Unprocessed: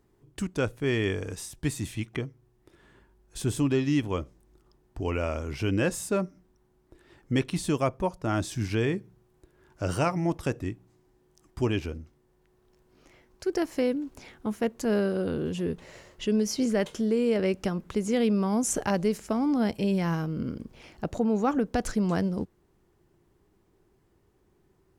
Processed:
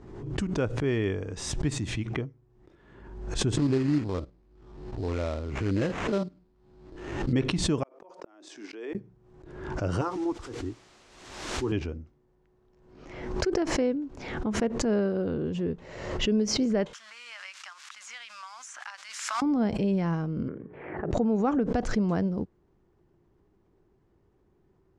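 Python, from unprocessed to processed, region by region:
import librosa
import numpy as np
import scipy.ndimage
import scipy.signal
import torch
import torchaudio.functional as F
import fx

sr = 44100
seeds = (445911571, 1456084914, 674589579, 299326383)

y = fx.chain(x, sr, fx.spec_steps(hold_ms=50),
    fx.sample_hold(seeds[0], rate_hz=4600.0, jitter_pct=20), at=(3.57, 7.33))
y = fx.chain(y, sr, fx.steep_highpass(hz=300.0, slope=36),
    fx.gate_flip(shuts_db=-28.0, range_db=-39), at=(7.83, 8.95))
y = fx.chain(y, sr, fx.auto_swell(attack_ms=110.0),
    fx.fixed_phaser(hz=620.0, stages=6),
    fx.quant_dither(seeds[1], bits=8, dither='triangular'), at=(10.01, 11.72))
y = fx.chain(y, sr, fx.crossing_spikes(level_db=-31.5),
    fx.cheby2_highpass(hz=450.0, order=4, stop_db=50),
    fx.band_squash(depth_pct=70), at=(16.93, 19.42))
y = fx.chain(y, sr, fx.cabinet(low_hz=140.0, low_slope=12, high_hz=2100.0, hz=(230.0, 400.0, 1800.0), db=(-8, 7, 9)),
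    fx.hum_notches(base_hz=60, count=7),
    fx.band_squash(depth_pct=70), at=(20.48, 21.11))
y = scipy.signal.sosfilt(scipy.signal.butter(4, 7200.0, 'lowpass', fs=sr, output='sos'), y)
y = fx.high_shelf(y, sr, hz=2000.0, db=-10.0)
y = fx.pre_swell(y, sr, db_per_s=54.0)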